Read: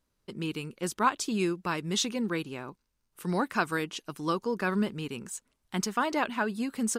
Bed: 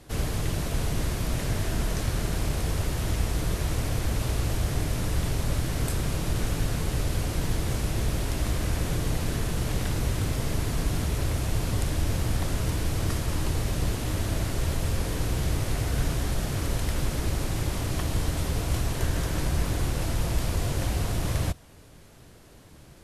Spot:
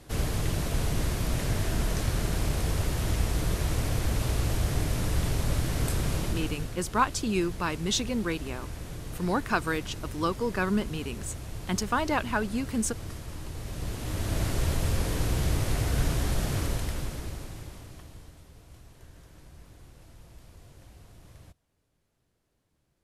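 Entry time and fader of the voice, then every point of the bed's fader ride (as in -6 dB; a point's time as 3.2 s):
5.95 s, +1.0 dB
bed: 6.18 s -0.5 dB
6.78 s -11.5 dB
13.51 s -11.5 dB
14.44 s 0 dB
16.57 s 0 dB
18.46 s -24.5 dB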